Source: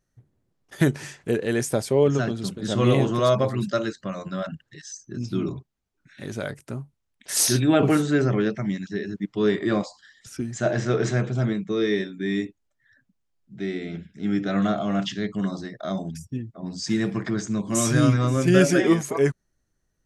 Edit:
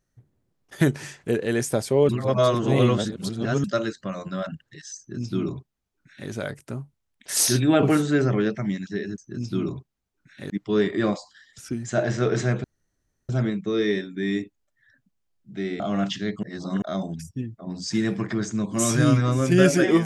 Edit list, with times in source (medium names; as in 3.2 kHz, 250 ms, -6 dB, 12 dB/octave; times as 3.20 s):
2.09–3.64 s: reverse
4.98–6.30 s: copy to 9.18 s
11.32 s: insert room tone 0.65 s
13.83–14.76 s: delete
15.39–15.78 s: reverse